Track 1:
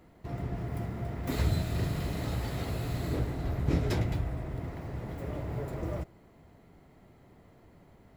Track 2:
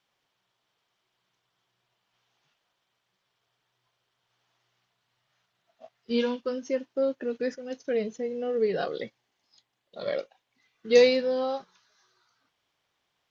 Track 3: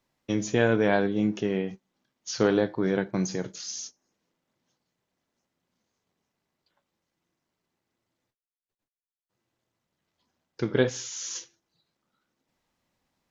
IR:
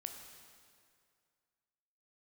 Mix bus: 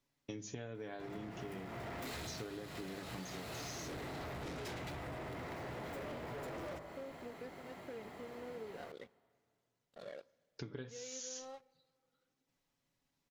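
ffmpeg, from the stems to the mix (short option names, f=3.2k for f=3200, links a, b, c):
-filter_complex "[0:a]bandreject=f=53.3:t=h:w=4,bandreject=f=106.6:t=h:w=4,bandreject=f=159.9:t=h:w=4,bandreject=f=213.2:t=h:w=4,bandreject=f=266.5:t=h:w=4,bandreject=f=319.8:t=h:w=4,bandreject=f=373.1:t=h:w=4,bandreject=f=426.4:t=h:w=4,bandreject=f=479.7:t=h:w=4,bandreject=f=533:t=h:w=4,bandreject=f=586.3:t=h:w=4,bandreject=f=639.6:t=h:w=4,bandreject=f=692.9:t=h:w=4,bandreject=f=746.2:t=h:w=4,bandreject=f=799.5:t=h:w=4,bandreject=f=852.8:t=h:w=4,bandreject=f=906.1:t=h:w=4,bandreject=f=959.4:t=h:w=4,bandreject=f=1.0127k:t=h:w=4,bandreject=f=1.066k:t=h:w=4,bandreject=f=1.1193k:t=h:w=4,bandreject=f=1.1726k:t=h:w=4,bandreject=f=1.2259k:t=h:w=4,bandreject=f=1.2792k:t=h:w=4,bandreject=f=1.3325k:t=h:w=4,bandreject=f=1.3858k:t=h:w=4,bandreject=f=1.4391k:t=h:w=4,bandreject=f=1.4924k:t=h:w=4,bandreject=f=1.5457k:t=h:w=4,bandreject=f=1.599k:t=h:w=4,bandreject=f=1.6523k:t=h:w=4,bandreject=f=1.7056k:t=h:w=4,bandreject=f=1.7589k:t=h:w=4,bandreject=f=1.8122k:t=h:w=4,bandreject=f=1.8655k:t=h:w=4,bandreject=f=1.9188k:t=h:w=4,bandreject=f=1.9721k:t=h:w=4,bandreject=f=2.0254k:t=h:w=4,asplit=2[a][b];[b]highpass=f=720:p=1,volume=33dB,asoftclip=type=tanh:threshold=-14.5dB[c];[a][c]amix=inputs=2:normalize=0,lowpass=f=7.3k:p=1,volume=-6dB,adelay=750,volume=-16dB,asplit=2[d][e];[e]volume=-6dB[f];[1:a]lowpass=4.3k,acompressor=threshold=-42dB:ratio=2,aeval=exprs='sgn(val(0))*max(abs(val(0))-0.00376,0)':c=same,volume=-8.5dB,asplit=2[g][h];[h]volume=-16dB[i];[2:a]equalizer=f=830:w=0.46:g=-5,bandreject=f=50:t=h:w=6,bandreject=f=100:t=h:w=6,bandreject=f=150:t=h:w=6,bandreject=f=200:t=h:w=6,aecho=1:1:7.1:0.46,volume=-5dB[j];[3:a]atrim=start_sample=2205[k];[f][i]amix=inputs=2:normalize=0[l];[l][k]afir=irnorm=-1:irlink=0[m];[d][g][j][m]amix=inputs=4:normalize=0,acompressor=threshold=-42dB:ratio=12"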